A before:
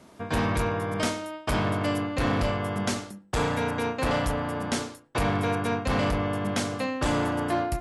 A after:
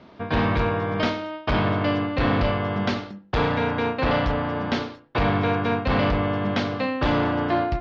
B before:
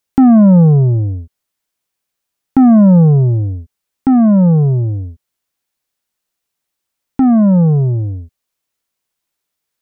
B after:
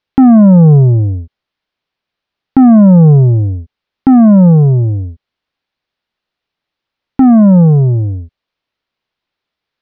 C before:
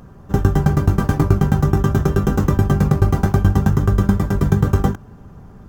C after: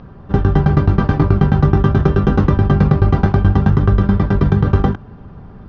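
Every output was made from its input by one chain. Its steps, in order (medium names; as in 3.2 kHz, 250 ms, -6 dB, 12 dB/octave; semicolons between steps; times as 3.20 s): inverse Chebyshev low-pass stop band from 8.1 kHz, stop band 40 dB; loudness maximiser +5 dB; trim -1 dB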